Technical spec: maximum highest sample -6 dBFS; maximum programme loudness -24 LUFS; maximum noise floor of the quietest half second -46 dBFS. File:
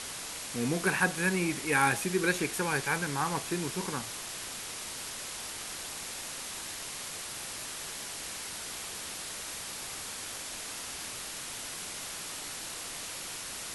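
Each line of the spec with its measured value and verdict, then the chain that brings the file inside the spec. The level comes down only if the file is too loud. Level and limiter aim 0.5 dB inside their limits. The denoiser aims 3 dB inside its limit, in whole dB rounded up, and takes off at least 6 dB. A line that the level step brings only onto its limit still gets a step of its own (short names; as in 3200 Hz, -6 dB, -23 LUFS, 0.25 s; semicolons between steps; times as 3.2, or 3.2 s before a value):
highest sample -13.5 dBFS: OK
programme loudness -33.5 LUFS: OK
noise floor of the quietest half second -40 dBFS: fail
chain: denoiser 9 dB, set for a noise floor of -40 dBFS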